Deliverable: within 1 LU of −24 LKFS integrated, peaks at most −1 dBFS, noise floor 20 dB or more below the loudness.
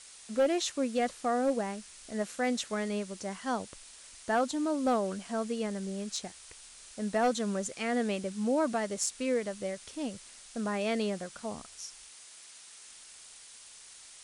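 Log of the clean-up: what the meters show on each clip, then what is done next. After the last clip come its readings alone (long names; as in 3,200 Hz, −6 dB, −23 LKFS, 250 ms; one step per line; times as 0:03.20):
share of clipped samples 0.3%; peaks flattened at −21.0 dBFS; background noise floor −52 dBFS; target noise floor −53 dBFS; integrated loudness −32.5 LKFS; sample peak −21.0 dBFS; target loudness −24.0 LKFS
→ clipped peaks rebuilt −21 dBFS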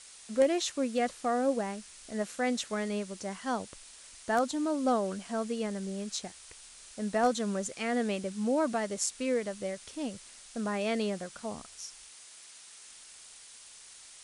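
share of clipped samples 0.0%; background noise floor −52 dBFS; target noise floor −53 dBFS
→ broadband denoise 6 dB, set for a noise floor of −52 dBFS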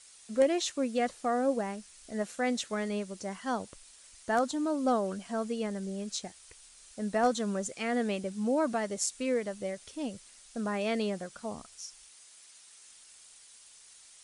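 background noise floor −56 dBFS; integrated loudness −32.5 LKFS; sample peak −14.0 dBFS; target loudness −24.0 LKFS
→ level +8.5 dB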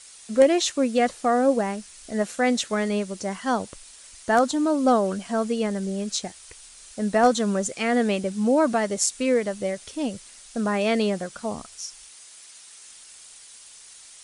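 integrated loudness −24.0 LKFS; sample peak −5.5 dBFS; background noise floor −47 dBFS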